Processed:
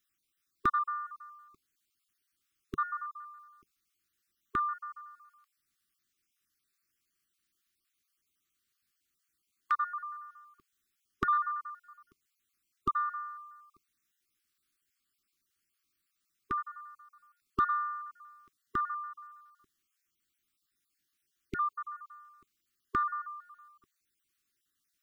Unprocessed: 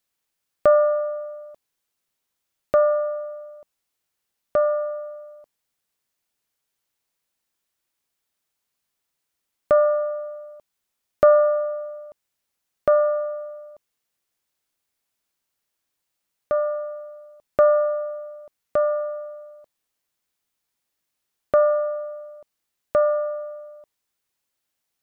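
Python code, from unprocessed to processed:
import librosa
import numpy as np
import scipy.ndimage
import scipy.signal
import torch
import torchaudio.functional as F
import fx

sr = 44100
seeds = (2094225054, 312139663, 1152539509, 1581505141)

y = fx.spec_dropout(x, sr, seeds[0], share_pct=31)
y = fx.brickwall_bandstop(y, sr, low_hz=410.0, high_hz=1100.0)
y = fx.peak_eq(y, sr, hz=470.0, db=fx.line((16.6, -11.5), (17.11, -5.5)), octaves=2.4, at=(16.6, 17.11), fade=0.02)
y = 10.0 ** (-14.0 / 20.0) * np.tanh(y / 10.0 ** (-14.0 / 20.0))
y = fx.peak_eq(y, sr, hz=150.0, db=-4.0, octaves=0.34)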